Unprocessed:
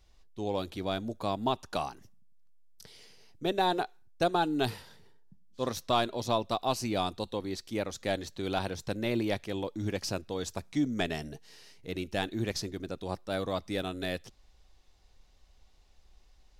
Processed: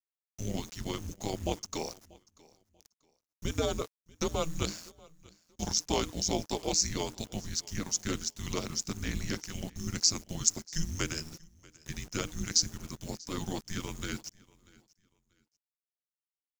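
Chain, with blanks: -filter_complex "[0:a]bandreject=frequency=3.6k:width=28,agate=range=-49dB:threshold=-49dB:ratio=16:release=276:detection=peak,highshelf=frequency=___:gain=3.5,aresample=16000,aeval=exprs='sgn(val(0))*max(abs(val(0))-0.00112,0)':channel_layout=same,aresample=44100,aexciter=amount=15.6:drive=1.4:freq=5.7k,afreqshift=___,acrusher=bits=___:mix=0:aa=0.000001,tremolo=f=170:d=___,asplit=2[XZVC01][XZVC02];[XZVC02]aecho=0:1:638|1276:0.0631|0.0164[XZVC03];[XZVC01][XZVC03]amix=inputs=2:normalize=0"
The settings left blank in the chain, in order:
2.6k, -310, 7, 0.75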